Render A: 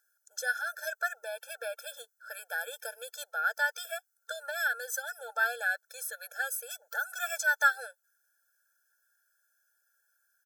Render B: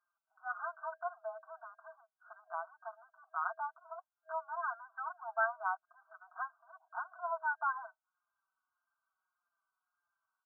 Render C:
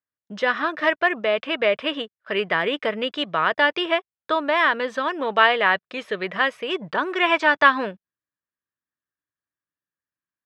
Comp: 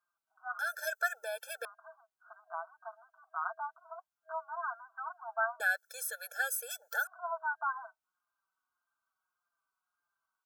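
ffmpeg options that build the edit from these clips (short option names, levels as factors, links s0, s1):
-filter_complex "[0:a]asplit=2[s0][s1];[1:a]asplit=3[s2][s3][s4];[s2]atrim=end=0.592[s5];[s0]atrim=start=0.588:end=1.652[s6];[s3]atrim=start=1.648:end=5.602[s7];[s1]atrim=start=5.598:end=7.072[s8];[s4]atrim=start=7.068[s9];[s5][s6]acrossfade=d=0.004:c1=hsin:c2=hsin[s10];[s10][s7]acrossfade=d=0.004:c1=hsin:c2=hsin[s11];[s11][s8]acrossfade=d=0.004:c1=hsin:c2=hsin[s12];[s12][s9]acrossfade=d=0.004:c1=hsin:c2=hsin"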